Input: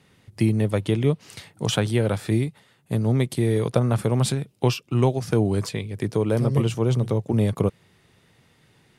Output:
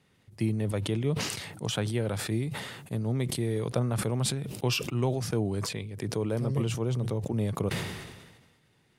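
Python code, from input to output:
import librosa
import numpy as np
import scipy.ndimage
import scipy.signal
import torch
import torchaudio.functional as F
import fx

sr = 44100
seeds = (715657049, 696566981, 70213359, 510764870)

y = fx.sustainer(x, sr, db_per_s=43.0)
y = y * librosa.db_to_amplitude(-8.5)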